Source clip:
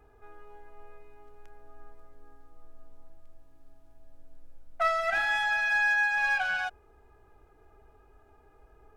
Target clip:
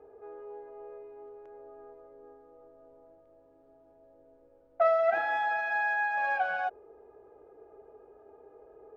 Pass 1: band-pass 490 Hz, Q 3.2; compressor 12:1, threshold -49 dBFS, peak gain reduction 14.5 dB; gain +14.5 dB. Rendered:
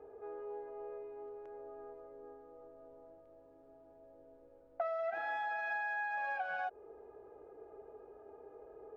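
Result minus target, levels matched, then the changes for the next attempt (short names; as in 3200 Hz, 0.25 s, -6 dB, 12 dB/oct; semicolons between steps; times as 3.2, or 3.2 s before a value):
compressor: peak gain reduction +14.5 dB
remove: compressor 12:1, threshold -49 dBFS, peak gain reduction 14.5 dB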